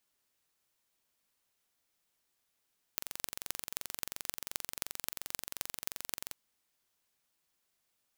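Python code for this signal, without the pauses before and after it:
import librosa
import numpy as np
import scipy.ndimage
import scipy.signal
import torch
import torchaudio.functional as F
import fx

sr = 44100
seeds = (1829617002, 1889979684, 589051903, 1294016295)

y = fx.impulse_train(sr, length_s=3.36, per_s=22.8, accent_every=6, level_db=-5.5)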